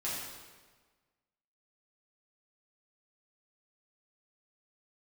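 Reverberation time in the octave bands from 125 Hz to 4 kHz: 1.5 s, 1.5 s, 1.4 s, 1.4 s, 1.3 s, 1.2 s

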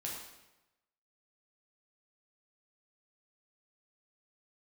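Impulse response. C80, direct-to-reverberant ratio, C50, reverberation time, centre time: 4.5 dB, -3.5 dB, 2.0 dB, 1.0 s, 55 ms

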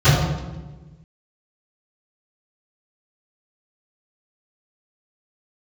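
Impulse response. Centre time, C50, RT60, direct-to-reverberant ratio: 81 ms, 0.0 dB, 1.2 s, -25.0 dB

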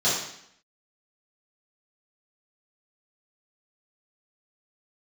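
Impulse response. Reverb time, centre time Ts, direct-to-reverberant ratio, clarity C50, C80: 0.70 s, 56 ms, -10.5 dB, 1.5 dB, 5.5 dB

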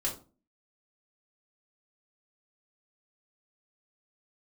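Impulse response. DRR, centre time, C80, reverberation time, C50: -4.5 dB, 22 ms, 15.0 dB, 0.35 s, 9.5 dB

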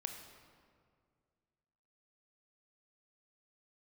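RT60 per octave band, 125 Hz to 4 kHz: 2.6 s, 2.4 s, 2.2 s, 1.9 s, 1.6 s, 1.2 s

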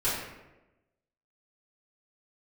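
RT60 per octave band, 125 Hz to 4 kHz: 1.1 s, 1.1 s, 1.1 s, 0.95 s, 0.90 s, 0.60 s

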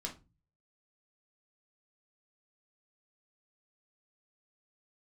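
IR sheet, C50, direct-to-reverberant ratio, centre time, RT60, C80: 12.0 dB, -1.5 dB, 15 ms, 0.30 s, 20.0 dB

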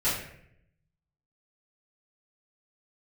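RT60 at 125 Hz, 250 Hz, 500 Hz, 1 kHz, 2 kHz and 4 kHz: 1.2 s, 0.95 s, 0.80 s, 0.60 s, 0.75 s, 0.50 s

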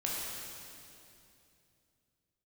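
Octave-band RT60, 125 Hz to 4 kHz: 3.7 s, 3.3 s, 2.9 s, 2.5 s, 2.5 s, 2.5 s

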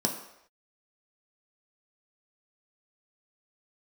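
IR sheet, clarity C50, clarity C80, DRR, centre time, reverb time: 8.0 dB, 10.0 dB, 1.0 dB, 23 ms, no single decay rate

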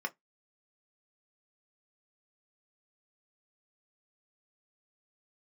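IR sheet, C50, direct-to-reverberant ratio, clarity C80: 27.5 dB, 3.5 dB, 40.0 dB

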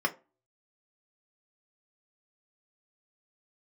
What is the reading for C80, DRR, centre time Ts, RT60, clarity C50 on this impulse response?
24.5 dB, 1.5 dB, 6 ms, 0.30 s, 19.0 dB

